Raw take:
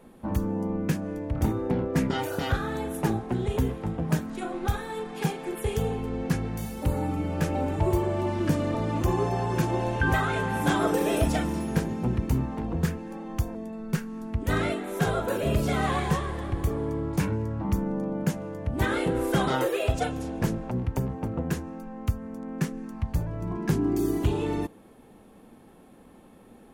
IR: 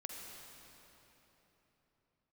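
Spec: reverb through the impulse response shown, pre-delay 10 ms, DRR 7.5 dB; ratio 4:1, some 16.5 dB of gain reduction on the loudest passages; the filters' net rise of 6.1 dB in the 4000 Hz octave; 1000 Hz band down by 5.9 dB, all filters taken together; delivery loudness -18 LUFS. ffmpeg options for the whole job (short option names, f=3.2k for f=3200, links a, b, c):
-filter_complex "[0:a]equalizer=f=1k:t=o:g=-8.5,equalizer=f=4k:t=o:g=8.5,acompressor=threshold=-41dB:ratio=4,asplit=2[a][b];[1:a]atrim=start_sample=2205,adelay=10[c];[b][c]afir=irnorm=-1:irlink=0,volume=-5.5dB[d];[a][d]amix=inputs=2:normalize=0,volume=24dB"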